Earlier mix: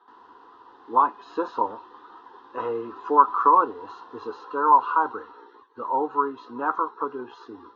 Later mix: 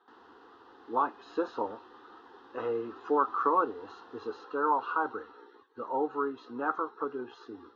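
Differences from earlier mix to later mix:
speech -3.0 dB; master: add peaking EQ 1 kHz -13.5 dB 0.23 oct

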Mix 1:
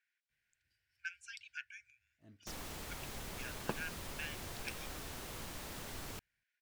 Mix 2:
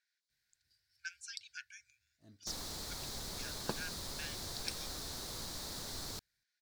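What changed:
second sound: add treble shelf 9 kHz -7 dB; master: add resonant high shelf 3.4 kHz +6.5 dB, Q 3

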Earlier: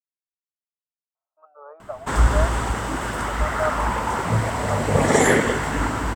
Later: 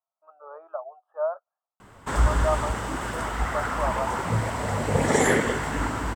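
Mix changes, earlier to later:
speech: entry -1.15 s; background -4.0 dB

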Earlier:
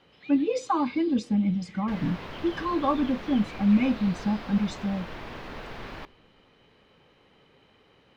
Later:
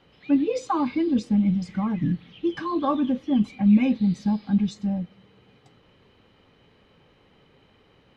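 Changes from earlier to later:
second sound: muted; master: add bass shelf 220 Hz +6.5 dB

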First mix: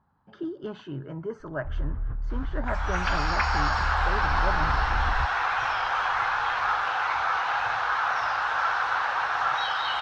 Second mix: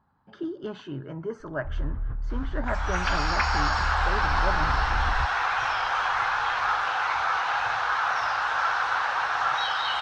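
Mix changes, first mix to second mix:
speech: send on; master: add treble shelf 5.6 kHz +7 dB

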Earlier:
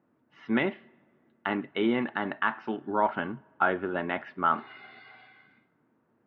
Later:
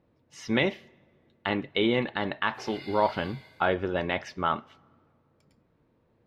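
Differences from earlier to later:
background: entry -1.95 s; master: remove cabinet simulation 200–2600 Hz, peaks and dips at 240 Hz +4 dB, 510 Hz -8 dB, 1.4 kHz +5 dB, 2.3 kHz -5 dB

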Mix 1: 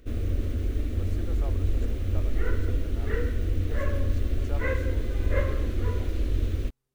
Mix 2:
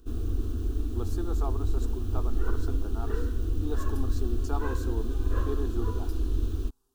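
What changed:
speech +10.5 dB; master: add static phaser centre 560 Hz, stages 6

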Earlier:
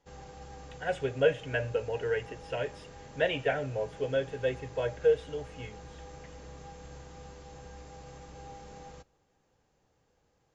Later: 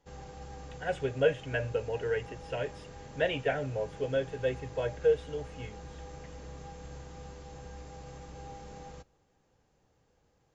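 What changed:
speech: send off; master: add bass shelf 320 Hz +3 dB

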